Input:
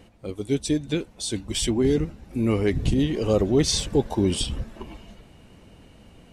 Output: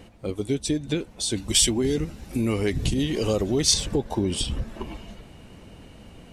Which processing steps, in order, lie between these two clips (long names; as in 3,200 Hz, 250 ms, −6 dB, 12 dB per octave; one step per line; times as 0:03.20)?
downward compressor 3 to 1, threshold −27 dBFS, peak gain reduction 9.5 dB
0:01.37–0:03.74: high-shelf EQ 3,000 Hz +10.5 dB
level +4 dB